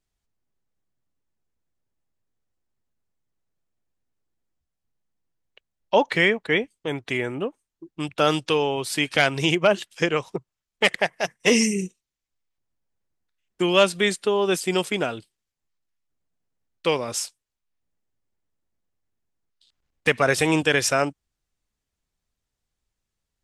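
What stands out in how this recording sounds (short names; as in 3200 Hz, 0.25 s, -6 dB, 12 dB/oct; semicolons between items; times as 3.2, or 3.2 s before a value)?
noise floor -84 dBFS; spectral tilt -3.5 dB/oct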